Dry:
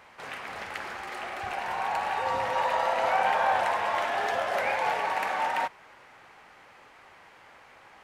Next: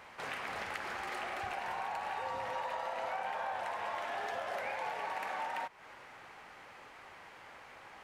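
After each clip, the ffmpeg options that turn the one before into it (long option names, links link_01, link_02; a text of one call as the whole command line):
ffmpeg -i in.wav -af "acompressor=threshold=-36dB:ratio=6" out.wav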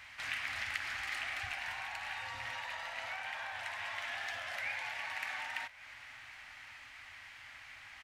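ffmpeg -i in.wav -af "firequalizer=gain_entry='entry(110,0);entry(170,-18);entry(260,-9);entry(430,-27);entry(620,-13);entry(960,-11);entry(1900,3);entry(5500,2);entry(10000,-1)':delay=0.05:min_phase=1,aecho=1:1:1109:0.0891,volume=2.5dB" out.wav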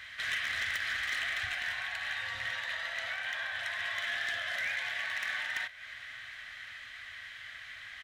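ffmpeg -i in.wav -af "superequalizer=6b=0.562:9b=0.355:11b=2:13b=2.24,asoftclip=type=hard:threshold=-30dB,volume=2dB" out.wav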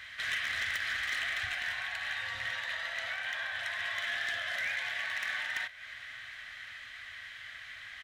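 ffmpeg -i in.wav -af anull out.wav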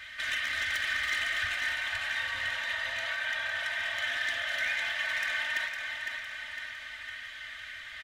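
ffmpeg -i in.wav -filter_complex "[0:a]aecho=1:1:3.3:0.81,asplit=2[link_01][link_02];[link_02]aecho=0:1:507|1014|1521|2028|2535|3042|3549:0.501|0.266|0.141|0.0746|0.0395|0.021|0.0111[link_03];[link_01][link_03]amix=inputs=2:normalize=0" out.wav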